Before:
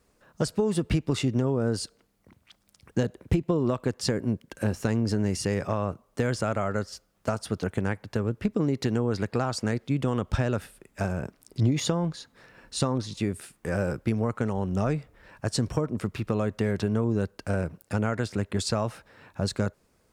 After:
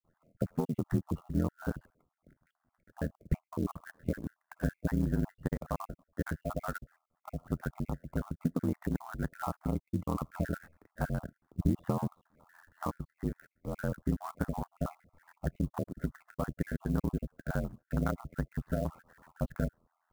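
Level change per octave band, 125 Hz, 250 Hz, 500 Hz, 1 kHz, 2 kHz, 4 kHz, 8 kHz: −7.0, −7.0, −11.5, −7.0, −8.5, −22.5, −18.0 decibels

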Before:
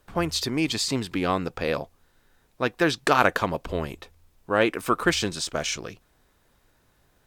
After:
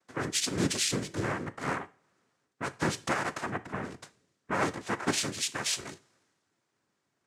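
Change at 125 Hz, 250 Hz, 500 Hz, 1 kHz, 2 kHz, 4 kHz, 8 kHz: −4.5, −7.0, −10.0, −8.0, −7.0, −4.5, +0.5 decibels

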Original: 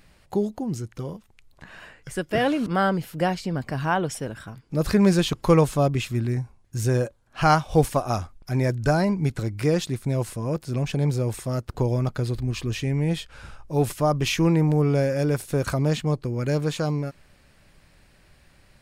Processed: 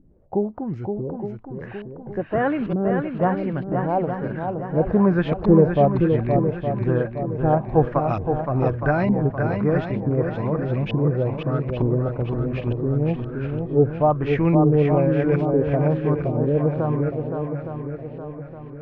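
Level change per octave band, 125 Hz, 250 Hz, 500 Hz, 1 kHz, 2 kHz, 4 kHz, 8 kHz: +2.0 dB, +3.5 dB, +4.5 dB, +1.5 dB, −1.5 dB, below −10 dB, below −30 dB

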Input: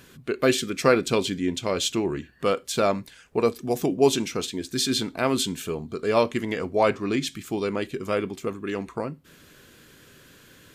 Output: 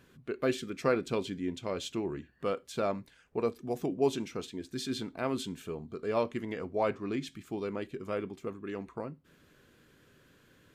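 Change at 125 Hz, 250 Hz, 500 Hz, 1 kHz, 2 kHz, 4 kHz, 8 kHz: −8.5, −8.5, −8.5, −9.5, −11.5, −14.0, −16.5 decibels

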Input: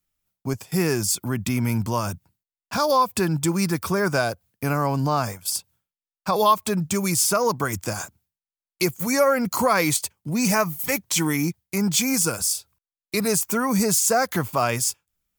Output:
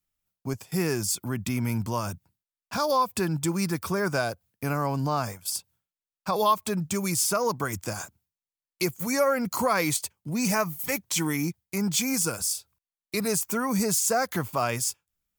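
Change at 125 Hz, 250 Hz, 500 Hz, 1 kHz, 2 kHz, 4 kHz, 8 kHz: −4.5, −4.5, −4.5, −4.5, −4.5, −4.5, −4.5 decibels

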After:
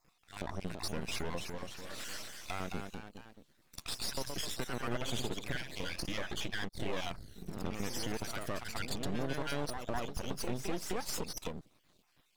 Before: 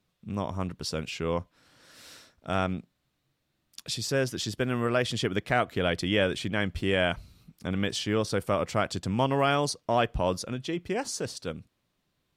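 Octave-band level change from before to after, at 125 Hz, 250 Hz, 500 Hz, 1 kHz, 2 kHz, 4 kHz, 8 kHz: −10.5, −10.5, −13.0, −11.5, −10.0, −7.0, −4.0 decibels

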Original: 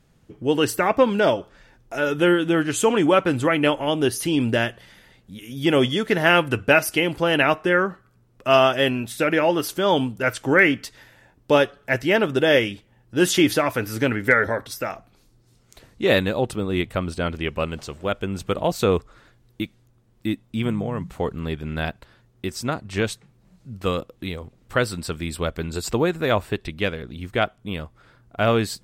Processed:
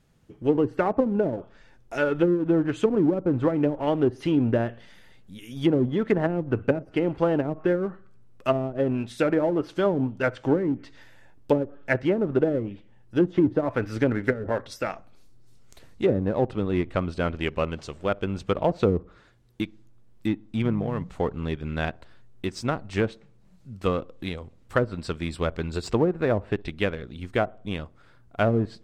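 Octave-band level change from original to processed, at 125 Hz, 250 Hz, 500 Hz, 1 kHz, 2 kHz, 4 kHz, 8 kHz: −1.0 dB, −1.0 dB, −3.5 dB, −7.5 dB, −11.0 dB, −13.5 dB, below −15 dB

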